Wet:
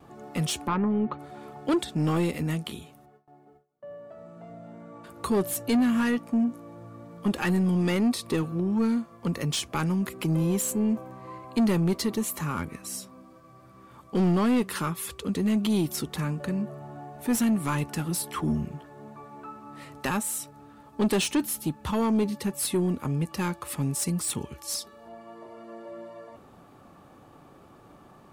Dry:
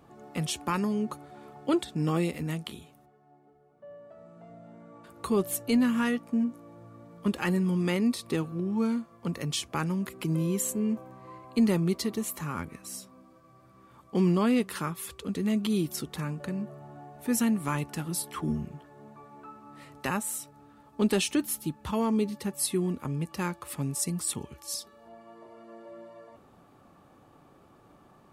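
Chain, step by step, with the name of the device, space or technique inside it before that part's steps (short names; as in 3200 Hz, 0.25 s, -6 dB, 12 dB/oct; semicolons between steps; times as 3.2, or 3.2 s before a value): 0.66–1.18 LPF 1500 Hz -> 3400 Hz 24 dB/oct; saturation between pre-emphasis and de-emphasis (high shelf 4600 Hz +8 dB; soft clip -23 dBFS, distortion -13 dB; high shelf 4600 Hz -8 dB); gate with hold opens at -53 dBFS; gain +5 dB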